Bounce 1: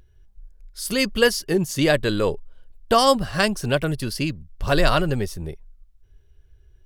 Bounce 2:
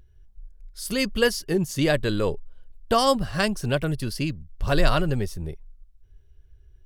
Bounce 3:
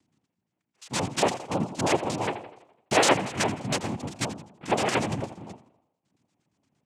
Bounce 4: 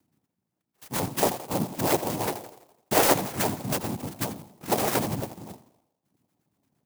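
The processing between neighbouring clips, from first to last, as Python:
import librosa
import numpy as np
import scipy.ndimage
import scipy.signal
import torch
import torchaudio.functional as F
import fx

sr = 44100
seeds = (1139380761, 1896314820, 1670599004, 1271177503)

y1 = fx.low_shelf(x, sr, hz=190.0, db=5.0)
y1 = y1 * librosa.db_to_amplitude(-4.0)
y2 = fx.filter_lfo_lowpass(y1, sr, shape='square', hz=8.6, low_hz=860.0, high_hz=3100.0, q=5.6)
y2 = fx.echo_tape(y2, sr, ms=83, feedback_pct=56, wet_db=-11, lp_hz=2200.0, drive_db=1.0, wow_cents=22)
y2 = fx.noise_vocoder(y2, sr, seeds[0], bands=4)
y2 = y2 * librosa.db_to_amplitude(-5.5)
y3 = fx.clock_jitter(y2, sr, seeds[1], jitter_ms=0.092)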